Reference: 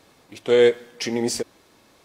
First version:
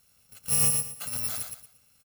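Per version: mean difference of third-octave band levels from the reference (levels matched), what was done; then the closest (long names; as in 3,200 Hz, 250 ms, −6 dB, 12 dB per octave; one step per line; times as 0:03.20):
13.5 dB: samples in bit-reversed order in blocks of 128 samples
repeating echo 116 ms, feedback 28%, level −5 dB
level −8.5 dB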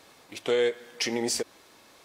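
4.5 dB: low-shelf EQ 360 Hz −9 dB
downward compressor 2.5 to 1, threshold −28 dBFS, peak gain reduction 9.5 dB
level +2.5 dB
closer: second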